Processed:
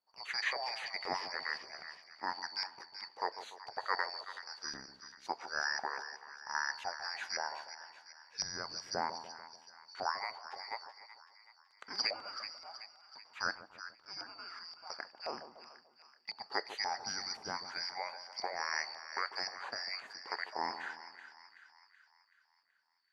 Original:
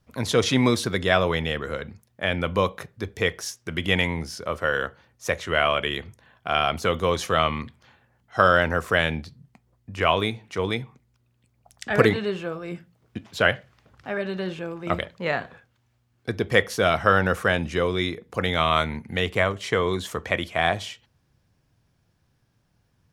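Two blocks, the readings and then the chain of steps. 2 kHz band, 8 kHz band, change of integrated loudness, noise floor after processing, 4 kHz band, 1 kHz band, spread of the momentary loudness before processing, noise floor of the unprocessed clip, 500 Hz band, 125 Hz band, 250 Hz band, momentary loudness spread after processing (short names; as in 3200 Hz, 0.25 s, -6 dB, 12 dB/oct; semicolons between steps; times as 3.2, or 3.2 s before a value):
-14.0 dB, -8.5 dB, -15.5 dB, -70 dBFS, -10.5 dB, -13.0 dB, 14 LU, -68 dBFS, -24.0 dB, -35.0 dB, -28.0 dB, 16 LU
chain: four-band scrambler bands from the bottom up 2341; LFO band-pass saw up 1.9 Hz 760–2200 Hz; split-band echo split 1100 Hz, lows 0.146 s, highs 0.378 s, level -11 dB; gain -3.5 dB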